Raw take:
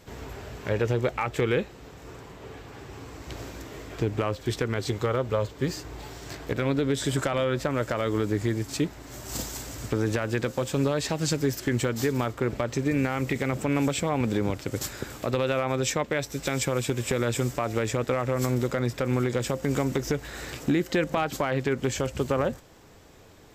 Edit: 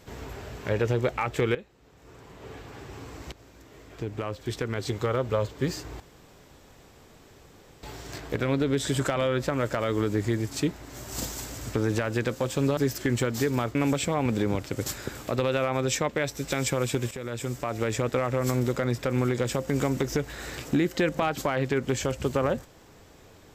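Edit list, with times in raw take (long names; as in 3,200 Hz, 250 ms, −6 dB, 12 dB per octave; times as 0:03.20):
0:01.55–0:02.52: fade in quadratic, from −16 dB
0:03.32–0:05.26: fade in, from −17 dB
0:06.00: splice in room tone 1.83 s
0:10.94–0:11.39: remove
0:12.37–0:13.70: remove
0:17.06–0:17.91: fade in linear, from −12.5 dB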